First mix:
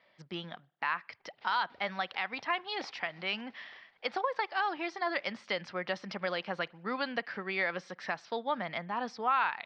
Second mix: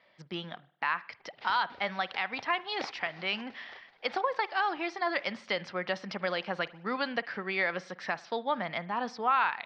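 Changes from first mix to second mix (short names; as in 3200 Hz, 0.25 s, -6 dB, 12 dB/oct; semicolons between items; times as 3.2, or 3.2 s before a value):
speech: send +10.5 dB; background +9.0 dB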